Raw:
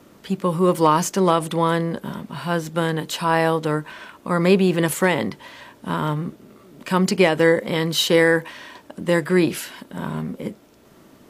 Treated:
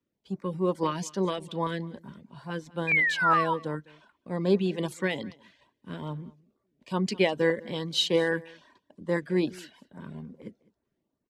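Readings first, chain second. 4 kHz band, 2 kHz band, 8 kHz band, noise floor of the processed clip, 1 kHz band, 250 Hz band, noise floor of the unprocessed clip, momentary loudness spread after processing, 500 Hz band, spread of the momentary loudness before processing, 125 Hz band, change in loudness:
-6.5 dB, -5.0 dB, -13.5 dB, -81 dBFS, -8.5 dB, -9.5 dB, -51 dBFS, 21 LU, -9.5 dB, 17 LU, -10.0 dB, -7.5 dB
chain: band-stop 1.3 kHz, Q 8.2; reverb removal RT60 0.57 s; gate -43 dBFS, range -8 dB; dynamic bell 3.5 kHz, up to +4 dB, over -39 dBFS, Q 1.9; painted sound fall, 2.87–3.54 s, 930–2500 Hz -14 dBFS; LFO notch saw up 2.4 Hz 630–3500 Hz; distance through air 67 m; delay 206 ms -20.5 dB; three bands expanded up and down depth 40%; trim -8.5 dB

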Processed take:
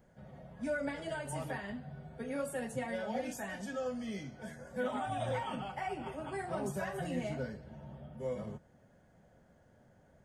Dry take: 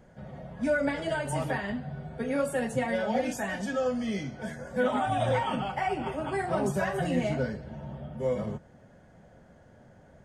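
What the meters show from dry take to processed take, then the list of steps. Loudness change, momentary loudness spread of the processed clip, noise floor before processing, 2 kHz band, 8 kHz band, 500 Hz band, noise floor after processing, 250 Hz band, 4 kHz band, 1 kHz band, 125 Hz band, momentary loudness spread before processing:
-9.0 dB, 12 LU, -56 dBFS, -9.0 dB, -6.0 dB, -9.0 dB, -65 dBFS, -9.0 dB, -8.5 dB, -9.0 dB, -9.0 dB, 12 LU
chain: treble shelf 11 kHz +10.5 dB; trim -9 dB

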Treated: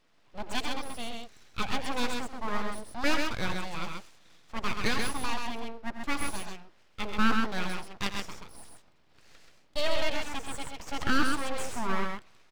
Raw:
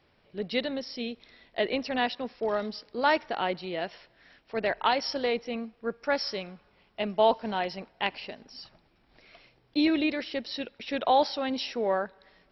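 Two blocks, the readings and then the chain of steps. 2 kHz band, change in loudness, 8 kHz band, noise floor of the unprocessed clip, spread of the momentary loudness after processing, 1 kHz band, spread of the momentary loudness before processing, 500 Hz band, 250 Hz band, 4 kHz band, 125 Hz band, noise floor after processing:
+1.0 dB, -3.5 dB, no reading, -66 dBFS, 15 LU, -4.5 dB, 14 LU, -9.0 dB, -3.0 dB, -1.5 dB, +5.5 dB, -61 dBFS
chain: full-wave rectifier; loudspeakers at several distances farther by 30 m -12 dB, 45 m -4 dB; trim -1 dB

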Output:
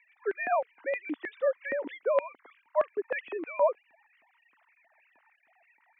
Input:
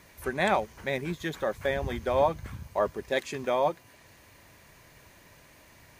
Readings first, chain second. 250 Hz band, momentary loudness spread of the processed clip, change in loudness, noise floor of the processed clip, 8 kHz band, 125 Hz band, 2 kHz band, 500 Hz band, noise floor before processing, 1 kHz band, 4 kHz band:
-6.5 dB, 8 LU, -1.5 dB, -70 dBFS, under -30 dB, under -30 dB, -2.5 dB, -0.5 dB, -56 dBFS, -4.0 dB, under -15 dB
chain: formants replaced by sine waves; LFO high-pass square 3.2 Hz 260–2400 Hz; three-band isolator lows -15 dB, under 280 Hz, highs -17 dB, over 2.8 kHz

